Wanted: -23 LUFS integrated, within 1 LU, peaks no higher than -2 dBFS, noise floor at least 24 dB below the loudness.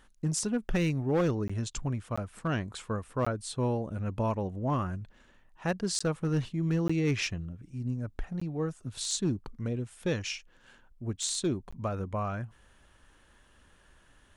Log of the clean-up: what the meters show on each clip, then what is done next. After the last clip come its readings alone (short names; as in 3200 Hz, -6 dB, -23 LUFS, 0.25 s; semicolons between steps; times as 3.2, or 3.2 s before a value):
clipped 0.6%; flat tops at -21.5 dBFS; dropouts 7; longest dropout 15 ms; loudness -32.5 LUFS; peak -21.5 dBFS; loudness target -23.0 LUFS
-> clip repair -21.5 dBFS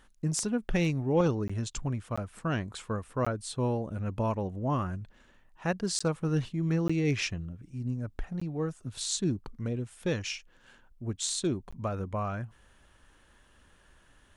clipped 0.0%; dropouts 7; longest dropout 15 ms
-> interpolate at 1.48/2.16/3.25/5.99/6.88/8.4/11.71, 15 ms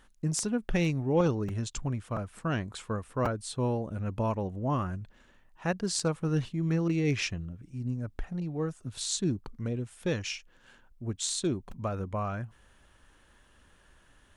dropouts 0; loudness -32.0 LUFS; peak -12.5 dBFS; loudness target -23.0 LUFS
-> gain +9 dB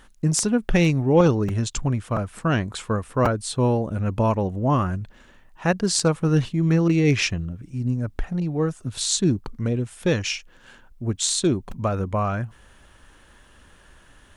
loudness -23.0 LUFS; peak -3.5 dBFS; noise floor -53 dBFS